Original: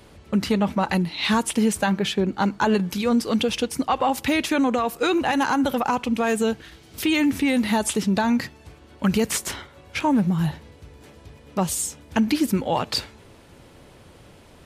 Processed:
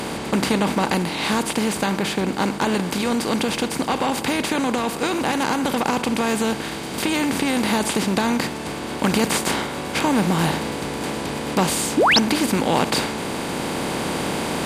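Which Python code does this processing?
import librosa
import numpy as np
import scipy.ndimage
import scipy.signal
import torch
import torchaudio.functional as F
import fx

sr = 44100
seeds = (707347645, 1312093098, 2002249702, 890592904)

y = fx.bin_compress(x, sr, power=0.4)
y = fx.rider(y, sr, range_db=5, speed_s=2.0)
y = fx.spec_paint(y, sr, seeds[0], shape='rise', start_s=11.97, length_s=0.22, low_hz=240.0, high_hz=6400.0, level_db=-10.0)
y = F.gain(torch.from_numpy(y), -5.0).numpy()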